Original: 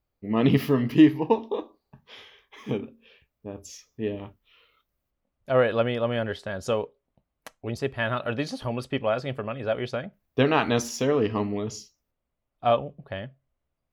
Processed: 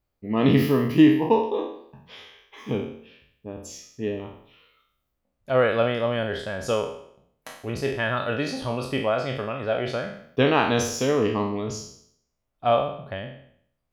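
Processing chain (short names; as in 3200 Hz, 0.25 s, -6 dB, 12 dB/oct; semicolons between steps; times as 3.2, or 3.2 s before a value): spectral trails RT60 0.65 s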